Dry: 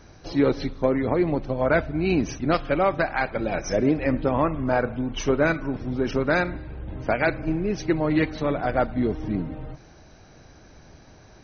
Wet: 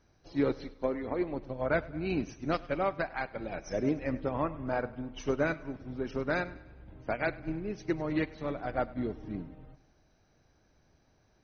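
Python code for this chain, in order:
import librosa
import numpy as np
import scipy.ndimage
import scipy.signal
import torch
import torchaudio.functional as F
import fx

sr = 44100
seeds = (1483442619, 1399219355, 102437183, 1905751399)

y = fx.peak_eq(x, sr, hz=140.0, db=-9.0, octaves=0.73, at=(0.64, 1.35))
y = fx.echo_feedback(y, sr, ms=100, feedback_pct=58, wet_db=-15.5)
y = fx.upward_expand(y, sr, threshold_db=-38.0, expansion=1.5)
y = y * 10.0 ** (-7.5 / 20.0)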